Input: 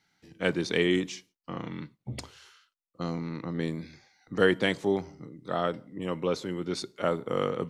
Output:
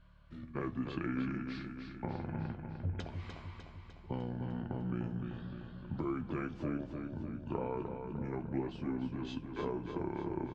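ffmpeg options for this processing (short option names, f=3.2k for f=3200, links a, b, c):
-filter_complex "[0:a]lowpass=f=1.7k:p=1,alimiter=limit=-18.5dB:level=0:latency=1:release=98,acompressor=threshold=-41dB:ratio=4,aeval=exprs='val(0)+0.000708*(sin(2*PI*50*n/s)+sin(2*PI*2*50*n/s)/2+sin(2*PI*3*50*n/s)/3+sin(2*PI*4*50*n/s)/4+sin(2*PI*5*50*n/s)/5)':c=same,flanger=delay=8.1:depth=1.1:regen=52:speed=1.4:shape=sinusoidal,asetrate=32193,aresample=44100,asplit=2[a][b];[b]aecho=0:1:301|602|903|1204|1505|1806|2107|2408:0.473|0.274|0.159|0.0923|0.0535|0.0311|0.018|0.0104[c];[a][c]amix=inputs=2:normalize=0,volume=8.5dB"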